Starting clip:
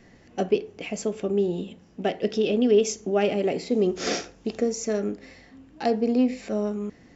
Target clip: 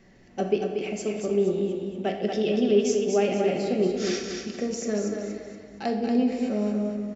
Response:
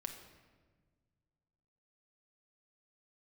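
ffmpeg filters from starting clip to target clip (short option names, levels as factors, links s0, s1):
-filter_complex "[0:a]asettb=1/sr,asplit=3[s0][s1][s2];[s0]atrim=end=3.874[s3];[s1]atrim=start=3.87:end=4.54,asetpts=PTS-STARTPTS,afade=t=in:d=0.004:c=qsin,afade=t=out:st=0.666:d=0.004:c=qsin,equalizer=f=620:w=1.1:g=-15[s4];[s2]atrim=start=4.536[s5];[s3][s4]acrossfade=d=0.004:c1=hsin:c2=qsin[s6];[s6][s5]acrossfade=d=0.004:c1=qsin:c2=hsin,aecho=1:1:235|470|705|940:0.562|0.202|0.0729|0.0262[s7];[1:a]atrim=start_sample=2205[s8];[s7][s8]afir=irnorm=-1:irlink=0"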